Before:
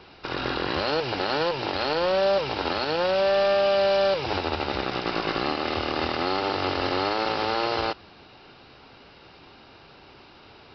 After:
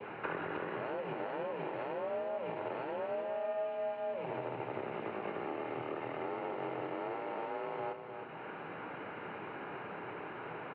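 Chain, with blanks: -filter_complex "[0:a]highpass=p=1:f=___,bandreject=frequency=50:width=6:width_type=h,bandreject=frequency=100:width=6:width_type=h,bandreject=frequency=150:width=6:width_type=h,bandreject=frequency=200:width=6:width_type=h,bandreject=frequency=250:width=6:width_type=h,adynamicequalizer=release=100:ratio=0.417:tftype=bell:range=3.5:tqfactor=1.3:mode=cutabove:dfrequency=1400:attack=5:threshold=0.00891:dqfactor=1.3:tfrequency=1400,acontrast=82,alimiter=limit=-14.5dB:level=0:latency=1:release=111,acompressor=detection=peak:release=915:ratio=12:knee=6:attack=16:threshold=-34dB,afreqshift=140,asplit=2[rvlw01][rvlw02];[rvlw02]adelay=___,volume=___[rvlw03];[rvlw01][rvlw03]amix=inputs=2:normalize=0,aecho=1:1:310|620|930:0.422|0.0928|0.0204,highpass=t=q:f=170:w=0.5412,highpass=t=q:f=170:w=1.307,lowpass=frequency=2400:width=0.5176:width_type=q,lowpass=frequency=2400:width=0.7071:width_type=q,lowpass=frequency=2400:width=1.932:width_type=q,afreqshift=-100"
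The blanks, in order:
110, 27, -12.5dB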